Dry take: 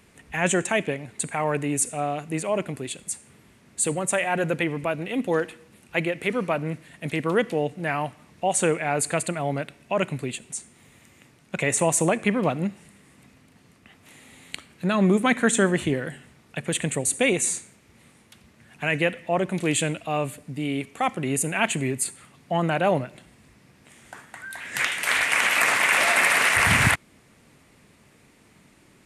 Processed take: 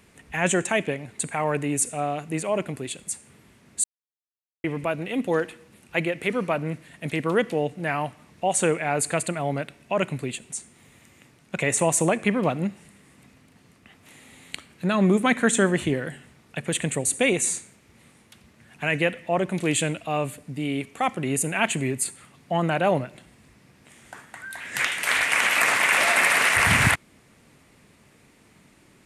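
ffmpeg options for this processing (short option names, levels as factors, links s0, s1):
-filter_complex "[0:a]asplit=3[s0][s1][s2];[s0]atrim=end=3.84,asetpts=PTS-STARTPTS,afade=t=out:st=3.836:d=0.004:c=hsin[s3];[s1]atrim=start=3.84:end=4.64,asetpts=PTS-STARTPTS,volume=0[s4];[s2]atrim=start=4.64,asetpts=PTS-STARTPTS,afade=t=in:d=0.004:c=hsin[s5];[s3][s4][s5]concat=n=3:v=0:a=1"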